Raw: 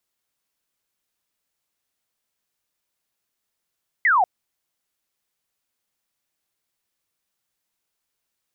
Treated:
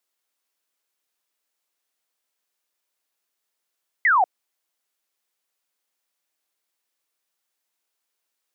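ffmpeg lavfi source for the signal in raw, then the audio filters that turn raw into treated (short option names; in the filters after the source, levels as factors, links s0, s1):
-f lavfi -i "aevalsrc='0.2*clip(t/0.002,0,1)*clip((0.19-t)/0.002,0,1)*sin(2*PI*2100*0.19/log(690/2100)*(exp(log(690/2100)*t/0.19)-1))':d=0.19:s=44100"
-af "highpass=320"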